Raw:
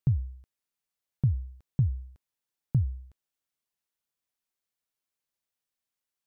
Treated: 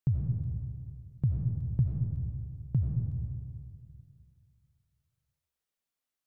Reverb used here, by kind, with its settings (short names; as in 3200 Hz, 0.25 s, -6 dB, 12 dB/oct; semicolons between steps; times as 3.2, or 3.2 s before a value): digital reverb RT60 2.2 s, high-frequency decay 0.3×, pre-delay 45 ms, DRR 0.5 dB; gain -3 dB